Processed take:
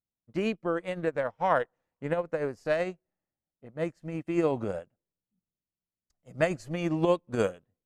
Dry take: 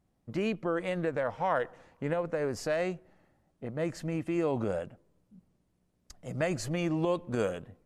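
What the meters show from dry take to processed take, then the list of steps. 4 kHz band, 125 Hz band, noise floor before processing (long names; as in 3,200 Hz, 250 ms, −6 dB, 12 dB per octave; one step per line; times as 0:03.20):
0.0 dB, −0.5 dB, −74 dBFS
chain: expander for the loud parts 2.5 to 1, over −47 dBFS
level +6.5 dB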